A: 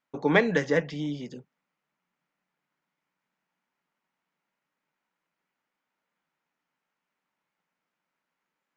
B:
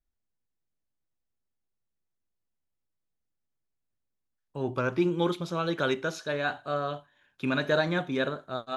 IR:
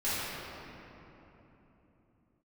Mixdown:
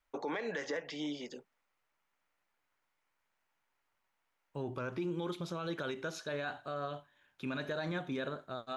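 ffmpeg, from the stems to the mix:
-filter_complex "[0:a]highpass=420,alimiter=limit=-17.5dB:level=0:latency=1:release=277,volume=0.5dB[link_01];[1:a]volume=-4dB[link_02];[link_01][link_02]amix=inputs=2:normalize=0,alimiter=level_in=4.5dB:limit=-24dB:level=0:latency=1:release=88,volume=-4.5dB"

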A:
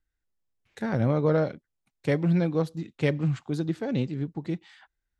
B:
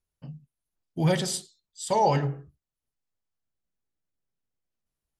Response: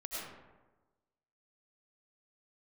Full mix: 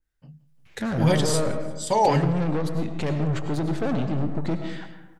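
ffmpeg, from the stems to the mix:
-filter_complex "[0:a]alimiter=limit=-22dB:level=0:latency=1,asoftclip=type=tanh:threshold=-35dB,adynamicequalizer=threshold=0.002:dfrequency=1900:dqfactor=0.7:tfrequency=1900:tqfactor=0.7:attack=5:release=100:ratio=0.375:range=2.5:mode=cutabove:tftype=highshelf,volume=-0.5dB,asplit=2[link_01][link_02];[link_02]volume=-4dB[link_03];[1:a]volume=-7.5dB,asplit=2[link_04][link_05];[link_05]volume=-24dB[link_06];[2:a]atrim=start_sample=2205[link_07];[link_03][link_07]afir=irnorm=-1:irlink=0[link_08];[link_06]aecho=0:1:173|346|519|692|865|1038|1211|1384|1557:1|0.59|0.348|0.205|0.121|0.0715|0.0422|0.0249|0.0147[link_09];[link_01][link_04][link_08][link_09]amix=inputs=4:normalize=0,dynaudnorm=framelen=210:gausssize=5:maxgain=10dB"

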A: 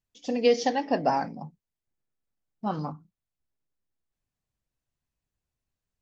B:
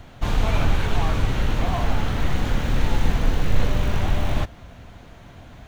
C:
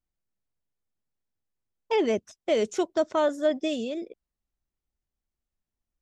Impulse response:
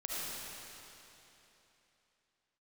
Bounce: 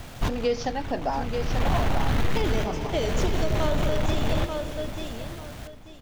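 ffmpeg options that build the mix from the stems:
-filter_complex "[0:a]asoftclip=type=tanh:threshold=-10.5dB,volume=-3dB,asplit=3[link_01][link_02][link_03];[link_02]volume=-6dB[link_04];[1:a]acrusher=bits=7:mix=0:aa=0.000001,aeval=exprs='0.596*sin(PI/2*3.98*val(0)/0.596)':channel_layout=same,volume=-13dB,asplit=2[link_05][link_06];[link_06]volume=-15dB[link_07];[2:a]equalizer=frequency=4700:width_type=o:width=1.4:gain=7.5,adelay=450,volume=-6dB,asplit=3[link_08][link_09][link_10];[link_09]volume=-5dB[link_11];[link_10]volume=-4.5dB[link_12];[link_03]apad=whole_len=250170[link_13];[link_05][link_13]sidechaincompress=threshold=-40dB:ratio=5:attack=7.3:release=420[link_14];[3:a]atrim=start_sample=2205[link_15];[link_11][link_15]afir=irnorm=-1:irlink=0[link_16];[link_04][link_07][link_12]amix=inputs=3:normalize=0,aecho=0:1:887|1774|2661|3548:1|0.25|0.0625|0.0156[link_17];[link_01][link_14][link_08][link_16][link_17]amix=inputs=5:normalize=0,alimiter=limit=-15dB:level=0:latency=1:release=192"

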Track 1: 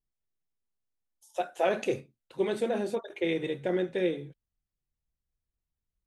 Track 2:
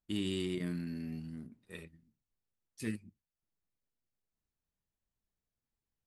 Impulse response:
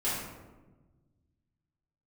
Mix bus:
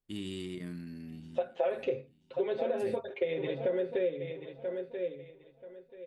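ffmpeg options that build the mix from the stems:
-filter_complex "[0:a]lowpass=frequency=4000:width=0.5412,lowpass=frequency=4000:width=1.3066,equalizer=frequency=520:width_type=o:width=0.47:gain=10.5,aecho=1:1:7.5:0.79,volume=-3dB,asplit=2[link_01][link_02];[link_02]volume=-12.5dB[link_03];[1:a]volume=-4dB,asplit=2[link_04][link_05];[link_05]volume=-22.5dB[link_06];[link_03][link_06]amix=inputs=2:normalize=0,aecho=0:1:984|1968|2952|3936:1|0.22|0.0484|0.0106[link_07];[link_01][link_04][link_07]amix=inputs=3:normalize=0,acompressor=threshold=-28dB:ratio=5"

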